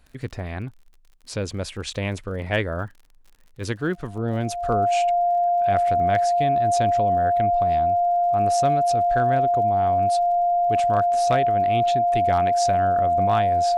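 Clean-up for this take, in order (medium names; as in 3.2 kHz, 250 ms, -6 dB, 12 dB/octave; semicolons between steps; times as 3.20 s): clip repair -11.5 dBFS; de-click; band-stop 700 Hz, Q 30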